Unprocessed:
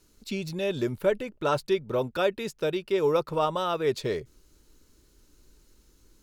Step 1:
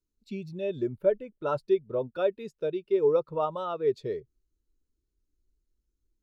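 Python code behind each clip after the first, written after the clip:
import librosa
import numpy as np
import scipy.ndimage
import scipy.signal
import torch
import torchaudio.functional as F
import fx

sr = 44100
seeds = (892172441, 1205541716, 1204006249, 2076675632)

y = fx.spectral_expand(x, sr, expansion=1.5)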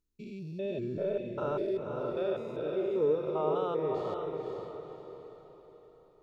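y = fx.spec_steps(x, sr, hold_ms=200)
y = fx.echo_diffused(y, sr, ms=502, feedback_pct=43, wet_db=-4)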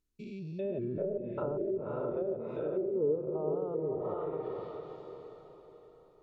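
y = fx.env_lowpass_down(x, sr, base_hz=490.0, full_db=-28.0)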